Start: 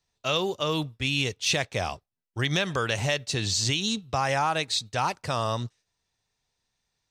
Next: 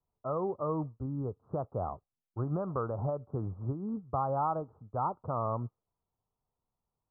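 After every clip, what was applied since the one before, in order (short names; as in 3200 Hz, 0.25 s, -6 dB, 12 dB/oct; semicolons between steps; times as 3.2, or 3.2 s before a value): steep low-pass 1300 Hz 96 dB/oct; gain -4.5 dB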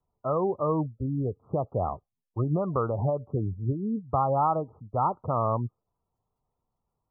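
spectral gate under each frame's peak -25 dB strong; gain +6.5 dB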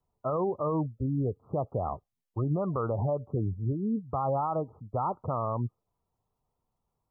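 limiter -21.5 dBFS, peak gain reduction 7 dB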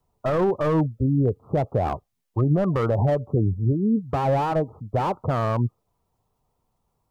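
slew limiter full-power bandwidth 26 Hz; gain +8.5 dB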